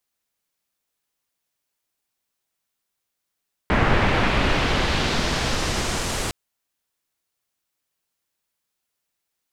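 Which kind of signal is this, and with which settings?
swept filtered noise pink, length 2.61 s lowpass, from 1800 Hz, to 9300 Hz, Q 1.1, exponential, gain ramp -9 dB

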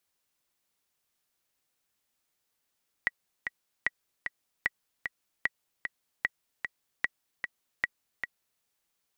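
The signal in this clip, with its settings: metronome 151 bpm, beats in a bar 2, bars 7, 1930 Hz, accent 6.5 dB -12.5 dBFS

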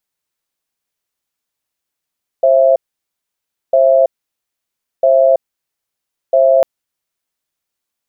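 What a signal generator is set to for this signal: cadence 532 Hz, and 666 Hz, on 0.33 s, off 0.97 s, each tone -9.5 dBFS 4.20 s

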